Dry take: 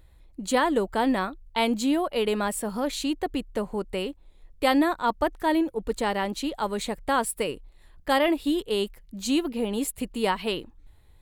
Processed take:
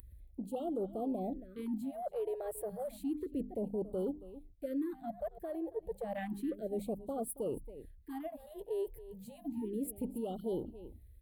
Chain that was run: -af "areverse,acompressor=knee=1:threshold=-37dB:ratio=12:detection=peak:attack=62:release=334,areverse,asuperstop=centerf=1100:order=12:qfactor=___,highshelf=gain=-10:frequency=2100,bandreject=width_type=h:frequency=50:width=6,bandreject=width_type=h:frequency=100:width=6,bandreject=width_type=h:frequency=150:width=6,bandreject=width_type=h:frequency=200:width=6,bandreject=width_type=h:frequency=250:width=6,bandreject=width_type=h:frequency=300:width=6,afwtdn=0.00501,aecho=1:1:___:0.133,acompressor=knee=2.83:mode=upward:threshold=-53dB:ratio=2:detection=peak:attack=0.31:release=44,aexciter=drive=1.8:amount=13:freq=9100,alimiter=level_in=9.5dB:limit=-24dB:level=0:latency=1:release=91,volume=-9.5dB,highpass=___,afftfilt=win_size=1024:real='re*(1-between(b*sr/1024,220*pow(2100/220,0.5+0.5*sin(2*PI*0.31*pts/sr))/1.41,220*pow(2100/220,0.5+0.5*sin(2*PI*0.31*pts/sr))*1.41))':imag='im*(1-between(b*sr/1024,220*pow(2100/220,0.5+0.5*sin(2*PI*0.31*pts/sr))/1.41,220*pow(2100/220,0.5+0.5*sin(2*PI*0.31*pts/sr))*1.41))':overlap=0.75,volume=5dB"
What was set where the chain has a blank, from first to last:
1.4, 276, 45